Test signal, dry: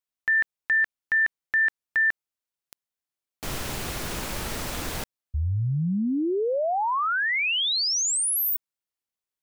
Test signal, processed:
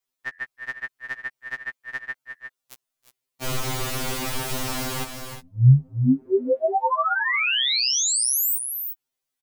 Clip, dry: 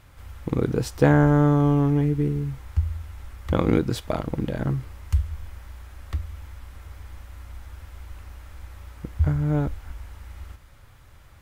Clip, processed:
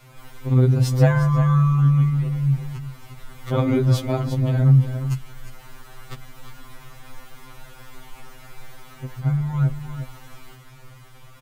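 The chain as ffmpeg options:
ffmpeg -i in.wav -filter_complex "[0:a]equalizer=frequency=1700:width_type=o:width=0.26:gain=-3,aecho=1:1:330|355:0.112|0.282,asplit=2[link_01][link_02];[link_02]acompressor=threshold=-32dB:ratio=6:attack=1.1:release=97:detection=peak,volume=2dB[link_03];[link_01][link_03]amix=inputs=2:normalize=0,adynamicequalizer=threshold=0.0251:dfrequency=130:dqfactor=2.1:tfrequency=130:tqfactor=2.1:attack=5:release=100:ratio=0.375:range=2.5:mode=boostabove:tftype=bell,afftfilt=real='re*2.45*eq(mod(b,6),0)':imag='im*2.45*eq(mod(b,6),0)':win_size=2048:overlap=0.75,volume=1.5dB" out.wav

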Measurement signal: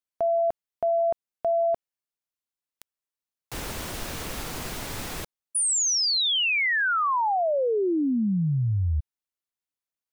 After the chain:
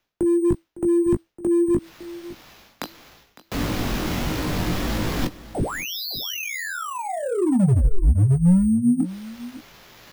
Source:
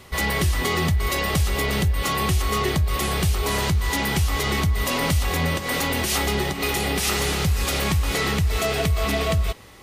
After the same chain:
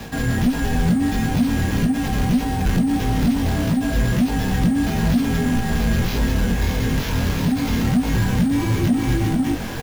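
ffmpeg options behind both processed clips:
ffmpeg -i in.wav -filter_complex "[0:a]equalizer=frequency=410:width=0.38:gain=8,afreqshift=-330,areverse,acompressor=mode=upward:threshold=-23dB:ratio=2.5:attack=96:release=204:knee=2.83:detection=peak,areverse,flanger=delay=19:depth=3.7:speed=1.6,acrusher=samples=5:mix=1:aa=0.000001,asoftclip=type=hard:threshold=-18dB,acrossover=split=330[link_01][link_02];[link_02]acompressor=threshold=-35dB:ratio=10:attack=7.3:release=33:knee=2.83:detection=peak[link_03];[link_01][link_03]amix=inputs=2:normalize=0,asplit=2[link_04][link_05];[link_05]adelay=17,volume=-10dB[link_06];[link_04][link_06]amix=inputs=2:normalize=0,asplit=2[link_07][link_08];[link_08]aecho=0:1:557:0.141[link_09];[link_07][link_09]amix=inputs=2:normalize=0,volume=5dB" out.wav

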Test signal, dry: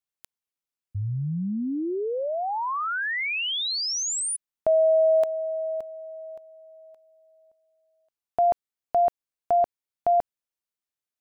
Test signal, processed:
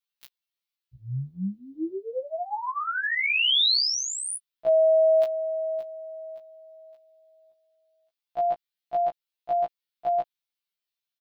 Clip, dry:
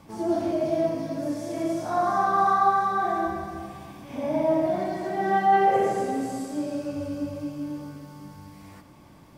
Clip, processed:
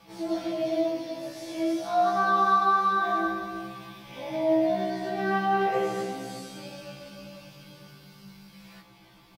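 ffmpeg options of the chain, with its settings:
ffmpeg -i in.wav -af "highshelf=frequency=5400:width_type=q:width=1.5:gain=-12.5,aecho=1:1:5.9:0.83,crystalizer=i=5.5:c=0,afftfilt=real='re*1.73*eq(mod(b,3),0)':imag='im*1.73*eq(mod(b,3),0)':win_size=2048:overlap=0.75,volume=-5.5dB" out.wav

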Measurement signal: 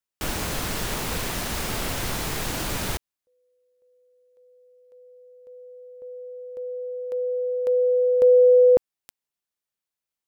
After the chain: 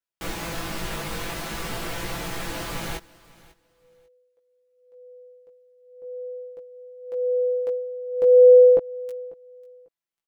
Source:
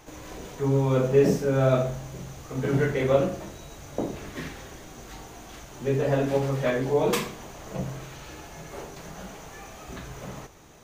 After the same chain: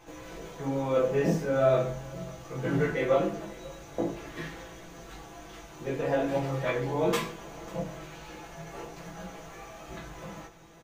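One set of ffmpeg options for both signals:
ffmpeg -i in.wav -filter_complex "[0:a]bass=frequency=250:gain=-2,treble=frequency=4000:gain=-5,aecho=1:1:6:0.65,flanger=delay=17:depth=2.1:speed=0.44,asplit=2[link_01][link_02];[link_02]aecho=0:1:545|1090:0.0794|0.0159[link_03];[link_01][link_03]amix=inputs=2:normalize=0" out.wav

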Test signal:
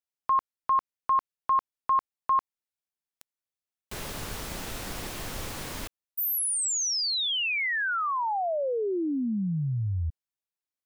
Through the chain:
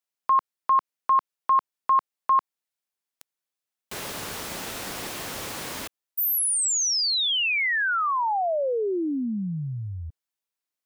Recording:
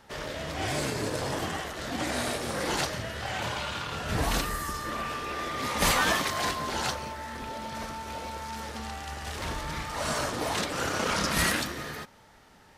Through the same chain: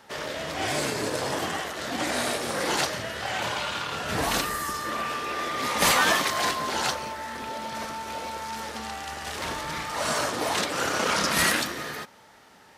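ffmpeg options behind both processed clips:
ffmpeg -i in.wav -af "highpass=frequency=250:poles=1,volume=4dB" out.wav

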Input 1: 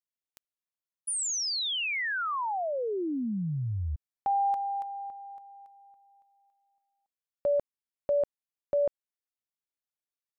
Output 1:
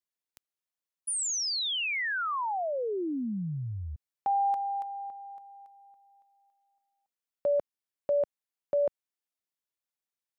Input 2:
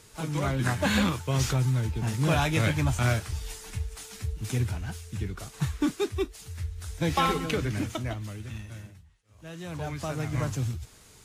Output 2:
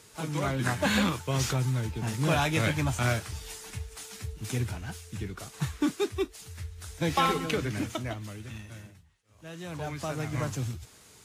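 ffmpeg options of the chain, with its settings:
ffmpeg -i in.wav -af "highpass=frequency=130:poles=1" out.wav

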